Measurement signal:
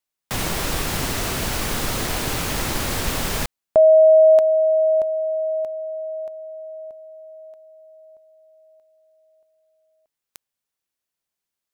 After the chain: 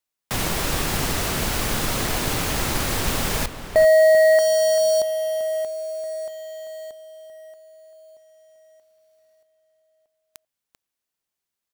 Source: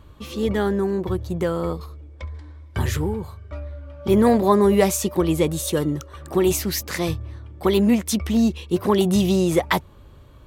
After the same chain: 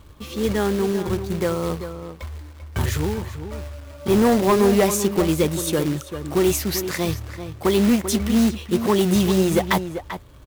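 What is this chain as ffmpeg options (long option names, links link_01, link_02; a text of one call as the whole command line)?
ffmpeg -i in.wav -filter_complex "[0:a]asoftclip=type=hard:threshold=-13dB,acrusher=bits=3:mode=log:mix=0:aa=0.000001,asplit=2[link_01][link_02];[link_02]adelay=390.7,volume=-10dB,highshelf=frequency=4000:gain=-8.79[link_03];[link_01][link_03]amix=inputs=2:normalize=0" out.wav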